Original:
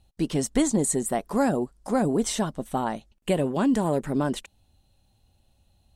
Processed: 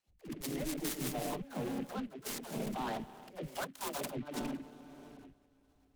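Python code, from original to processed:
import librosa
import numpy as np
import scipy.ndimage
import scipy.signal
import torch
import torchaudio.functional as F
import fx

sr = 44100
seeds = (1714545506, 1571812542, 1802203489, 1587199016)

y = fx.phaser_stages(x, sr, stages=6, low_hz=130.0, high_hz=4800.0, hz=1.0, feedback_pct=5)
y = fx.rev_schroeder(y, sr, rt60_s=2.9, comb_ms=26, drr_db=7.0)
y = fx.over_compress(y, sr, threshold_db=-28.0, ratio=-0.5)
y = fx.comb(y, sr, ms=6.7, depth=0.96, at=(0.59, 1.47))
y = fx.tilt_eq(y, sr, slope=4.5, at=(3.42, 4.09), fade=0.02)
y = fx.level_steps(y, sr, step_db=16)
y = fx.low_shelf(y, sr, hz=440.0, db=-10.0, at=(2.03, 2.49))
y = fx.dispersion(y, sr, late='lows', ms=85.0, hz=360.0)
y = fx.noise_mod_delay(y, sr, seeds[0], noise_hz=2000.0, depth_ms=0.048)
y = F.gain(torch.from_numpy(y), -5.0).numpy()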